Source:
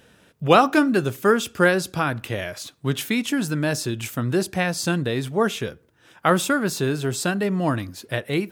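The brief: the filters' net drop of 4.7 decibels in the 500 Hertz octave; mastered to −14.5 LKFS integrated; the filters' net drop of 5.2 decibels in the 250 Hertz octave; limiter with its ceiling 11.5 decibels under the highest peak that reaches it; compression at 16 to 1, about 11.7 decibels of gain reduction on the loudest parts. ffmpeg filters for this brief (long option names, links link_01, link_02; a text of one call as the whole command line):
ffmpeg -i in.wav -af "equalizer=frequency=250:width_type=o:gain=-6,equalizer=frequency=500:width_type=o:gain=-4,acompressor=threshold=-23dB:ratio=16,volume=16.5dB,alimiter=limit=-4.5dB:level=0:latency=1" out.wav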